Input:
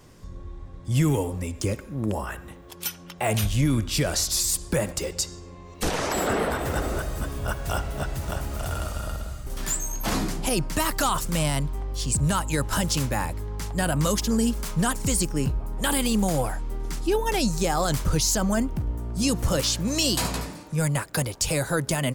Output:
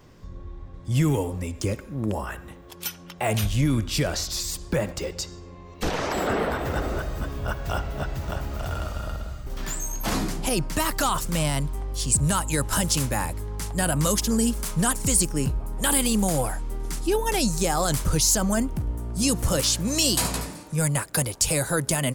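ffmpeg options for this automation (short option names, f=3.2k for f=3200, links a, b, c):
-af "asetnsamples=n=441:p=0,asendcmd='0.74 equalizer g -2.5;4.07 equalizer g -11.5;9.77 equalizer g 0;11.59 equalizer g 6.5',equalizer=f=10k:t=o:w=1:g=-11.5"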